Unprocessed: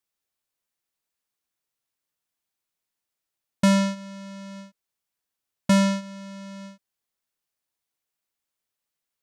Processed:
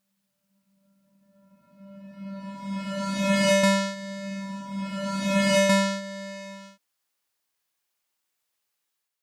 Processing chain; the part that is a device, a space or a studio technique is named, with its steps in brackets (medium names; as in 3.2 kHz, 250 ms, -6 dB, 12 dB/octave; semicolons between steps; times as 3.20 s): reverse reverb (reverse; reverberation RT60 2.9 s, pre-delay 119 ms, DRR -6 dB; reverse); bass shelf 370 Hz -11 dB